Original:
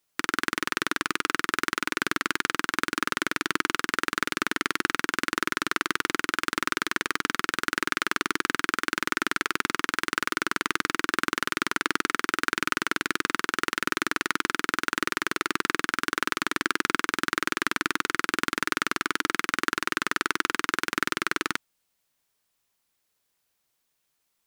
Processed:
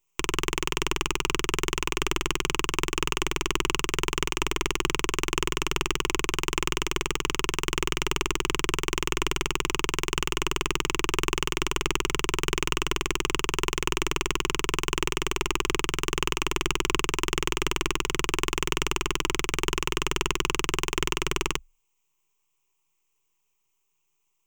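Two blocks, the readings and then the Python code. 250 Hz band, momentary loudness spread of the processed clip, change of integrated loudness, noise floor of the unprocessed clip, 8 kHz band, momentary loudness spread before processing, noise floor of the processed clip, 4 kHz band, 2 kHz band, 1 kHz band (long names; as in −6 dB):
0.0 dB, 1 LU, −0.5 dB, −76 dBFS, +4.0 dB, 1 LU, −75 dBFS, +3.0 dB, −4.5 dB, −2.5 dB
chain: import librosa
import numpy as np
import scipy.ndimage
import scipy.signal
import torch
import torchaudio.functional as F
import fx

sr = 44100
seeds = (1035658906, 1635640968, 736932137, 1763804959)

y = np.maximum(x, 0.0)
y = fx.ripple_eq(y, sr, per_octave=0.72, db=15)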